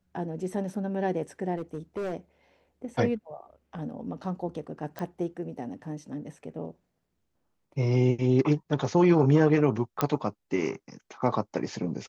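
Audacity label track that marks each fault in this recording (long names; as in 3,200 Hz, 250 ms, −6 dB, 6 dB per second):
1.550000	2.140000	clipping −28.5 dBFS
4.990000	4.990000	click −21 dBFS
10.010000	10.010000	click −10 dBFS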